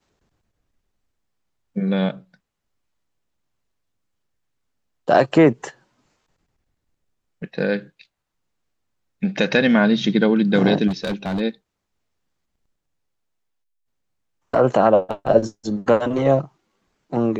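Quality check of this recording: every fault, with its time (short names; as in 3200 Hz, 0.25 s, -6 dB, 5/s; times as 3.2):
10.87–11.41 clipped -20 dBFS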